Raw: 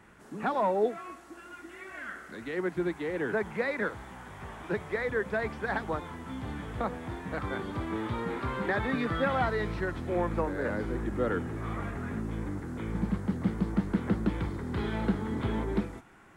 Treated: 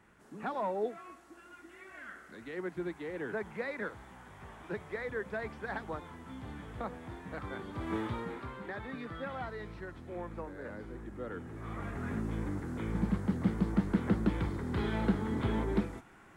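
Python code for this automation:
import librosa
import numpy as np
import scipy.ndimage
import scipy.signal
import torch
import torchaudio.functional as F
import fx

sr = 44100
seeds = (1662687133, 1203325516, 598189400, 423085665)

y = fx.gain(x, sr, db=fx.line((7.73, -7.0), (7.94, -0.5), (8.59, -12.0), (11.29, -12.0), (12.09, -1.0)))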